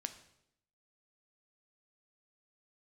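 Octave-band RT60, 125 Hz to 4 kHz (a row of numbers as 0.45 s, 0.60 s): 0.90 s, 0.90 s, 0.80 s, 0.70 s, 0.70 s, 0.70 s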